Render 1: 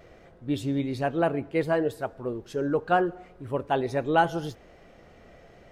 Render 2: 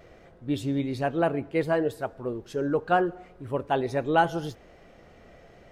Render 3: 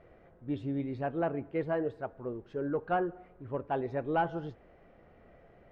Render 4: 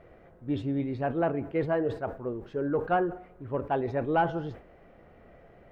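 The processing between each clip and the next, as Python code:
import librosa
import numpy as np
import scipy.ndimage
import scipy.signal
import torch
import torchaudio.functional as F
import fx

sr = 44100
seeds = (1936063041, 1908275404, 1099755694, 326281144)

y1 = x
y2 = 10.0 ** (-13.0 / 20.0) * np.tanh(y1 / 10.0 ** (-13.0 / 20.0))
y2 = scipy.signal.sosfilt(scipy.signal.butter(2, 2000.0, 'lowpass', fs=sr, output='sos'), y2)
y2 = y2 * librosa.db_to_amplitude(-6.0)
y3 = fx.sustainer(y2, sr, db_per_s=140.0)
y3 = y3 * librosa.db_to_amplitude(4.0)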